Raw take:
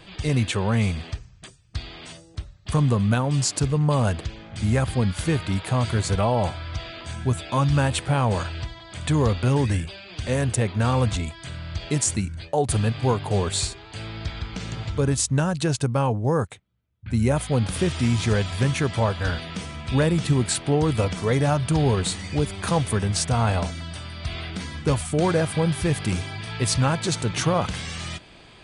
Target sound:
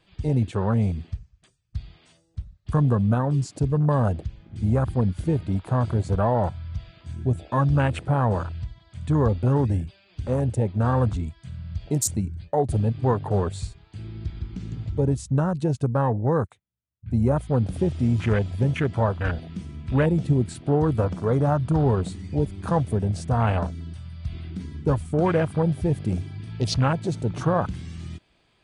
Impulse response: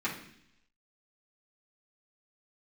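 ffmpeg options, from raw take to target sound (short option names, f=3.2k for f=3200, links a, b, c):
-af "afwtdn=0.0398"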